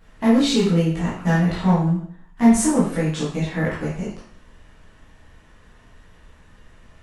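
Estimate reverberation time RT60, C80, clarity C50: 0.55 s, 7.0 dB, 2.5 dB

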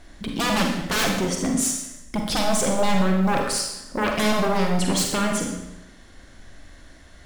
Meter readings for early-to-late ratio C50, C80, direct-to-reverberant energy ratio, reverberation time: 3.5 dB, 6.0 dB, 1.0 dB, 0.90 s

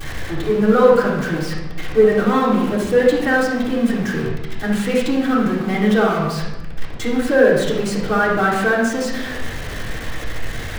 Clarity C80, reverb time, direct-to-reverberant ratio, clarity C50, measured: 5.0 dB, 1.0 s, -10.0 dB, 1.5 dB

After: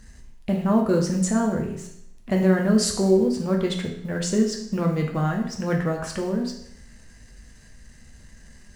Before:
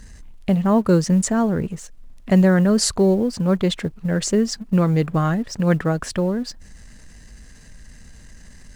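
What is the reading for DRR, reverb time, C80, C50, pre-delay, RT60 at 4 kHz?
0.5 dB, 0.75 s, 9.5 dB, 6.5 dB, 7 ms, 0.70 s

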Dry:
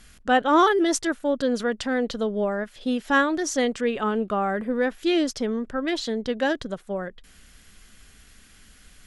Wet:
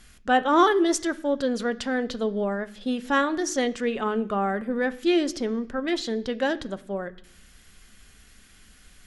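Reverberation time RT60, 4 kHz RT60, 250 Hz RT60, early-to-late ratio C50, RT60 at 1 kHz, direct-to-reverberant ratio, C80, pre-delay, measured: 0.65 s, 0.85 s, 0.85 s, 18.5 dB, 0.70 s, 10.5 dB, 21.0 dB, 3 ms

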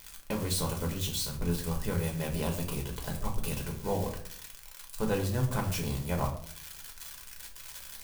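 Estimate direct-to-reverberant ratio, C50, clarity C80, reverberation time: 0.0 dB, 9.0 dB, 12.5 dB, 0.60 s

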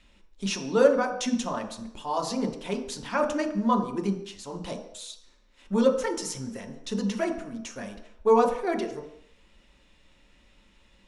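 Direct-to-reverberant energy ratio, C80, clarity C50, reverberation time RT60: 2.5 dB, 11.0 dB, 8.5 dB, 0.70 s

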